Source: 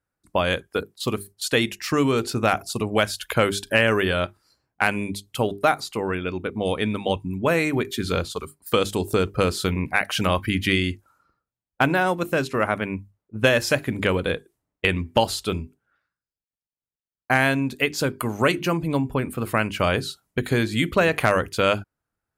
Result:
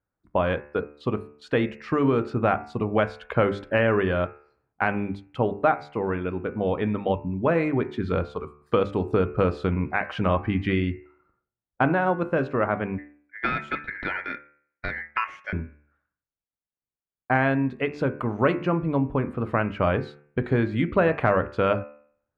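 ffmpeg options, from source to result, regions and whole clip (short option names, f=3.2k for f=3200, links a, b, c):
-filter_complex "[0:a]asettb=1/sr,asplit=3[a][b][c];[a]atrim=end=12.984[d];[b]atrim=start=12.98:end=15.53,asetpts=PTS-STARTPTS,afade=t=in:d=0.004:c=qsin,afade=t=out:st=2.546:d=0.004:c=qsin,lowpass=f=3.7k:p=1,equalizer=f=2.8k:t=o:w=0.4:g=-7.5,aeval=exprs='val(0)*sin(2*PI*1900*n/s)':c=same[e];[c]atrim=start=15.526[f];[d][e]acrossfade=d=0.004:c1=hsin:c2=qsin[g];[g][f]acrossfade=d=0.004:c1=qsin:c2=hsin,lowpass=1.5k,bandreject=f=73.28:t=h:w=4,bandreject=f=146.56:t=h:w=4,bandreject=f=219.84:t=h:w=4,bandreject=f=293.12:t=h:w=4,bandreject=f=366.4:t=h:w=4,bandreject=f=439.68:t=h:w=4,bandreject=f=512.96:t=h:w=4,bandreject=f=586.24:t=h:w=4,bandreject=f=659.52:t=h:w=4,bandreject=f=732.8:t=h:w=4,bandreject=f=806.08:t=h:w=4,bandreject=f=879.36:t=h:w=4,bandreject=f=952.64:t=h:w=4,bandreject=f=1.02592k:t=h:w=4,bandreject=f=1.0992k:t=h:w=4,bandreject=f=1.17248k:t=h:w=4,bandreject=f=1.24576k:t=h:w=4,bandreject=f=1.31904k:t=h:w=4,bandreject=f=1.39232k:t=h:w=4,bandreject=f=1.4656k:t=h:w=4,bandreject=f=1.53888k:t=h:w=4,bandreject=f=1.61216k:t=h:w=4,bandreject=f=1.68544k:t=h:w=4,bandreject=f=1.75872k:t=h:w=4,bandreject=f=1.832k:t=h:w=4,bandreject=f=1.90528k:t=h:w=4,bandreject=f=1.97856k:t=h:w=4,bandreject=f=2.05184k:t=h:w=4,bandreject=f=2.12512k:t=h:w=4,bandreject=f=2.1984k:t=h:w=4,bandreject=f=2.27168k:t=h:w=4,bandreject=f=2.34496k:t=h:w=4,bandreject=f=2.41824k:t=h:w=4,bandreject=f=2.49152k:t=h:w=4,bandreject=f=2.5648k:t=h:w=4,bandreject=f=2.63808k:t=h:w=4,bandreject=f=2.71136k:t=h:w=4,bandreject=f=2.78464k:t=h:w=4"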